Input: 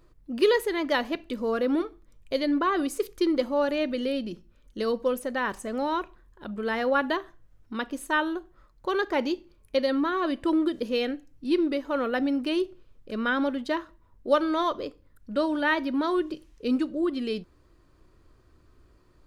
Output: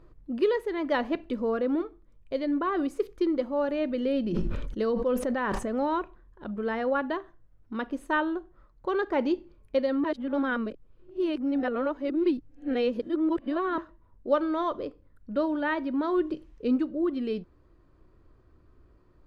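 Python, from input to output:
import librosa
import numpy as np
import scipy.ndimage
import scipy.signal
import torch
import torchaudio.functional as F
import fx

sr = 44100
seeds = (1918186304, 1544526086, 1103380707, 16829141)

y = fx.sustainer(x, sr, db_per_s=21.0, at=(4.32, 5.82), fade=0.02)
y = fx.edit(y, sr, fx.reverse_span(start_s=10.04, length_s=3.74), tone=tone)
y = fx.lowpass(y, sr, hz=1300.0, slope=6)
y = fx.rider(y, sr, range_db=10, speed_s=0.5)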